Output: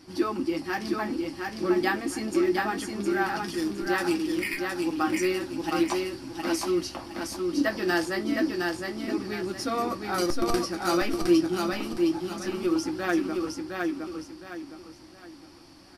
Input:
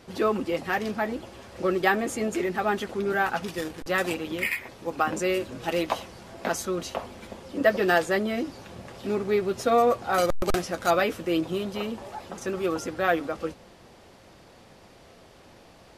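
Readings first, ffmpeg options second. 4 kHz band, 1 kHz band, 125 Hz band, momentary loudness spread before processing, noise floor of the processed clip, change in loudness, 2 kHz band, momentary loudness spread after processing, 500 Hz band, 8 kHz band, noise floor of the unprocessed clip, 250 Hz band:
+1.5 dB, −3.5 dB, −2.0 dB, 13 LU, −50 dBFS, −1.0 dB, −2.0 dB, 10 LU, −3.0 dB, +1.0 dB, −52 dBFS, +4.5 dB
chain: -filter_complex "[0:a]superequalizer=6b=3.16:7b=0.398:8b=0.501:14b=2.82:16b=1.78,flanger=delay=9.7:depth=8.7:regen=-51:speed=0.31:shape=triangular,asplit=2[link_01][link_02];[link_02]aecho=0:1:713|1426|2139|2852:0.668|0.221|0.0728|0.024[link_03];[link_01][link_03]amix=inputs=2:normalize=0"

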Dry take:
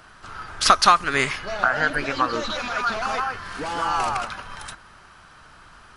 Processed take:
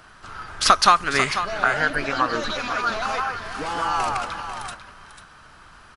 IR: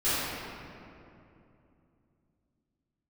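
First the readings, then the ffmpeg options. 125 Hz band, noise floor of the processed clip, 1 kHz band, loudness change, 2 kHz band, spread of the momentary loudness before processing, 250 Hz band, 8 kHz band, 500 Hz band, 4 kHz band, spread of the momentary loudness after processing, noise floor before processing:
+0.5 dB, −48 dBFS, +0.5 dB, 0.0 dB, +0.5 dB, 21 LU, 0.0 dB, +0.5 dB, +0.5 dB, +0.5 dB, 18 LU, −49 dBFS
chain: -af "aecho=1:1:494:0.299"

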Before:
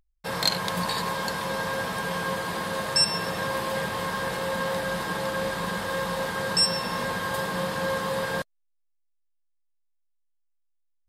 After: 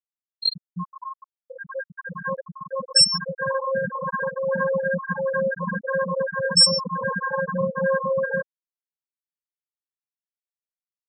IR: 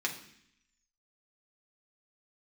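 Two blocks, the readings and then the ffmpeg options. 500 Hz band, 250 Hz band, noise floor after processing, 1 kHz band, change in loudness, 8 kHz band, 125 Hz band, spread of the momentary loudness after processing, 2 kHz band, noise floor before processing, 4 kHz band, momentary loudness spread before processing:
+5.0 dB, +0.5 dB, below −85 dBFS, −1.0 dB, +5.0 dB, +4.5 dB, +0.5 dB, 19 LU, +1.0 dB, −71 dBFS, +5.0 dB, 7 LU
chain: -af "dynaudnorm=framelen=410:gausssize=11:maxgain=4.5dB,afftfilt=real='re*gte(hypot(re,im),0.282)':imag='im*gte(hypot(re,im),0.282)':win_size=1024:overlap=0.75,volume=3.5dB"

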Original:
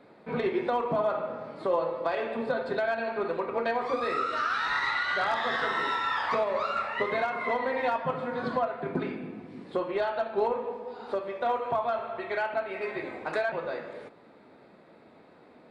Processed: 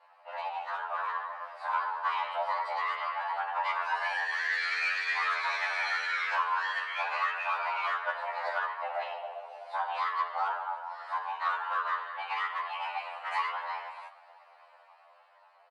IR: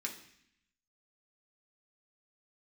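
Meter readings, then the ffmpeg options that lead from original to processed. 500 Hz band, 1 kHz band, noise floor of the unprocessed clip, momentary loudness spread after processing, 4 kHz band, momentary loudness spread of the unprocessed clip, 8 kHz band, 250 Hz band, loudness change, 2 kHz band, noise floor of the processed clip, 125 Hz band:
−14.0 dB, 0.0 dB, −55 dBFS, 9 LU, −0.5 dB, 8 LU, can't be measured, below −40 dB, −2.0 dB, +1.5 dB, −60 dBFS, below −40 dB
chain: -filter_complex "[0:a]equalizer=frequency=4800:width=7.2:gain=-5.5,afftfilt=real='hypot(re,im)*cos(2*PI*random(0))':imag='hypot(re,im)*sin(2*PI*random(1))':win_size=512:overlap=0.75,aeval=exprs='(tanh(20*val(0)+0.05)-tanh(0.05))/20':channel_layout=same,dynaudnorm=framelen=270:gausssize=9:maxgain=5.5dB,afreqshift=440,asplit=5[link_01][link_02][link_03][link_04][link_05];[link_02]adelay=143,afreqshift=87,volume=-21dB[link_06];[link_03]adelay=286,afreqshift=174,volume=-27dB[link_07];[link_04]adelay=429,afreqshift=261,volume=-33dB[link_08];[link_05]adelay=572,afreqshift=348,volume=-39.1dB[link_09];[link_01][link_06][link_07][link_08][link_09]amix=inputs=5:normalize=0,afftfilt=real='re*2*eq(mod(b,4),0)':imag='im*2*eq(mod(b,4),0)':win_size=2048:overlap=0.75,volume=1.5dB"

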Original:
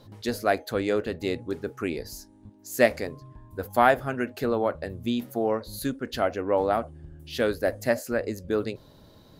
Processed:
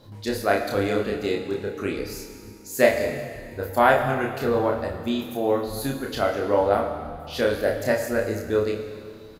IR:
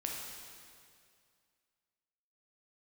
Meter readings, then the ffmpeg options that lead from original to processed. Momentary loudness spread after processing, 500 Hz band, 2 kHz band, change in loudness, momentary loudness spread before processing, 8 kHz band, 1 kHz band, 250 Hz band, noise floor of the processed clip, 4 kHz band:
14 LU, +3.5 dB, +3.0 dB, +3.0 dB, 14 LU, +3.5 dB, +2.5 dB, +2.0 dB, −43 dBFS, +3.0 dB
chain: -filter_complex "[0:a]asplit=2[link_01][link_02];[link_02]adelay=30,volume=-3dB[link_03];[link_01][link_03]amix=inputs=2:normalize=0,asplit=2[link_04][link_05];[1:a]atrim=start_sample=2205,adelay=28[link_06];[link_05][link_06]afir=irnorm=-1:irlink=0,volume=-5.5dB[link_07];[link_04][link_07]amix=inputs=2:normalize=0"

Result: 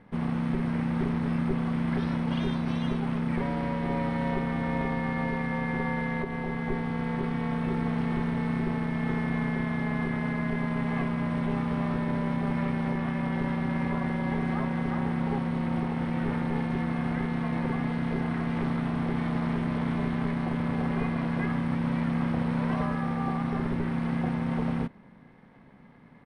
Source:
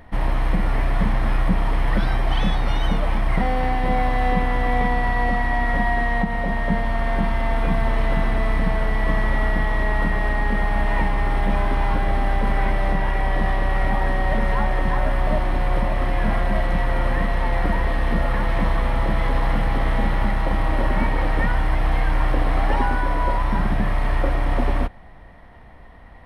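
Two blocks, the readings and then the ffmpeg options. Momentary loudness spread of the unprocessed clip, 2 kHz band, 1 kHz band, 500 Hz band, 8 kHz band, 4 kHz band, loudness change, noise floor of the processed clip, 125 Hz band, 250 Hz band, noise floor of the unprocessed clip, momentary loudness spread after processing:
2 LU, −10.0 dB, −10.5 dB, −8.0 dB, can't be measured, −10.0 dB, −6.5 dB, −52 dBFS, −4.5 dB, +1.0 dB, −42 dBFS, 1 LU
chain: -af "aeval=exprs='val(0)*sin(2*PI*200*n/s)':channel_layout=same,aresample=22050,aresample=44100,volume=-7dB"

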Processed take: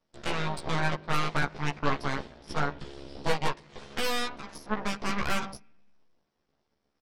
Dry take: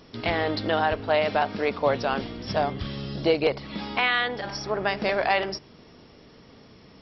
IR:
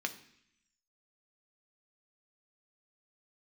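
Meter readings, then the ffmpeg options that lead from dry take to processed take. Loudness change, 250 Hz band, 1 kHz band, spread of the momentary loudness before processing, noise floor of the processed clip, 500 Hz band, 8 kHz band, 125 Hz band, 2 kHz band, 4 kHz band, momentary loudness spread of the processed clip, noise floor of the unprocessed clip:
−6.0 dB, −4.5 dB, −5.5 dB, 8 LU, −79 dBFS, −11.0 dB, can't be measured, −0.5 dB, −5.5 dB, −5.0 dB, 11 LU, −52 dBFS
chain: -filter_complex "[0:a]aeval=exprs='0.335*(cos(1*acos(clip(val(0)/0.335,-1,1)))-cos(1*PI/2))+0.119*(cos(3*acos(clip(val(0)/0.335,-1,1)))-cos(3*PI/2))+0.00944*(cos(5*acos(clip(val(0)/0.335,-1,1)))-cos(5*PI/2))+0.075*(cos(6*acos(clip(val(0)/0.335,-1,1)))-cos(6*PI/2))+0.00211*(cos(7*acos(clip(val(0)/0.335,-1,1)))-cos(7*PI/2))':channel_layout=same,asplit=2[link_01][link_02];[link_02]adelay=14,volume=-2dB[link_03];[link_01][link_03]amix=inputs=2:normalize=0,asplit=2[link_04][link_05];[1:a]atrim=start_sample=2205,lowpass=2300[link_06];[link_05][link_06]afir=irnorm=-1:irlink=0,volume=-11.5dB[link_07];[link_04][link_07]amix=inputs=2:normalize=0,volume=-6.5dB"

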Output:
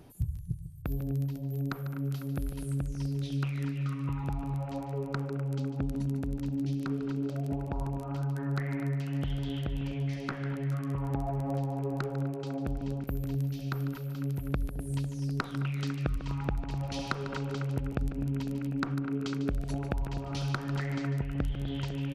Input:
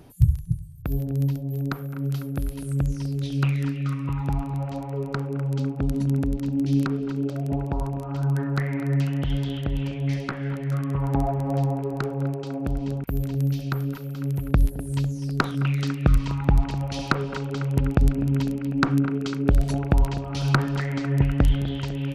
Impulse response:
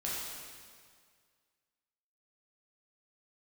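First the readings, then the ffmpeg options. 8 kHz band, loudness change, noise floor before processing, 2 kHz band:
can't be measured, −8.0 dB, −34 dBFS, −8.0 dB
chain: -filter_complex "[0:a]acompressor=threshold=-24dB:ratio=6,asplit=2[link_01][link_02];[link_02]aecho=0:1:148:0.251[link_03];[link_01][link_03]amix=inputs=2:normalize=0,volume=-4.5dB"

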